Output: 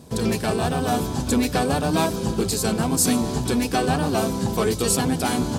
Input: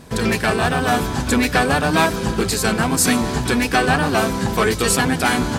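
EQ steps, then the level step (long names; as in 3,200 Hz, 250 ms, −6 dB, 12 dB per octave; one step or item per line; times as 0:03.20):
high-pass filter 58 Hz
parametric band 1,800 Hz −11.5 dB 1.4 octaves
−2.0 dB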